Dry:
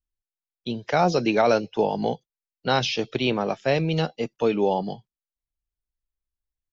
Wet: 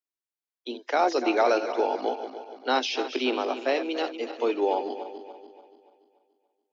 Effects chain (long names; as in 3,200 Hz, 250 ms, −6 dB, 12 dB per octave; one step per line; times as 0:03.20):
feedback delay that plays each chunk backwards 144 ms, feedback 65%, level −10 dB
Chebyshev high-pass with heavy ripple 250 Hz, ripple 3 dB
level −1 dB